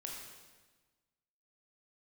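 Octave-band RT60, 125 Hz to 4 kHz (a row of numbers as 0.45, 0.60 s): 1.6, 1.5, 1.3, 1.3, 1.2, 1.2 s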